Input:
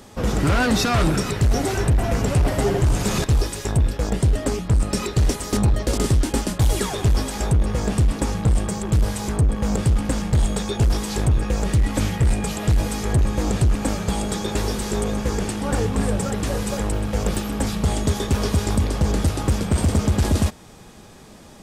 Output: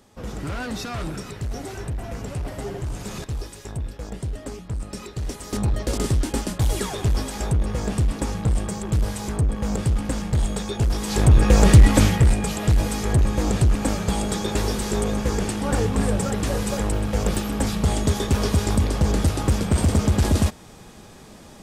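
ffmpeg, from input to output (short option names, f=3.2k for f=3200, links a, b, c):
-af "volume=9dB,afade=t=in:st=5.22:d=0.59:silence=0.398107,afade=t=in:st=10.97:d=0.71:silence=0.251189,afade=t=out:st=11.68:d=0.68:silence=0.354813"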